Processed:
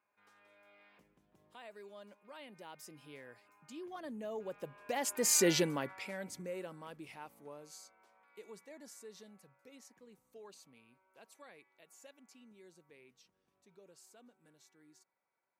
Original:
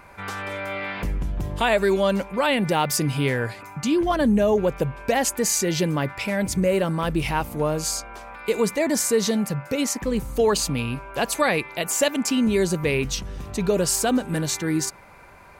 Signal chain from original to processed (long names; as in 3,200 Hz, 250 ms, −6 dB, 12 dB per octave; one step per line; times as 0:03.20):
source passing by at 0:05.46, 13 m/s, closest 1.8 metres
high-pass filter 240 Hz 12 dB per octave
level −3 dB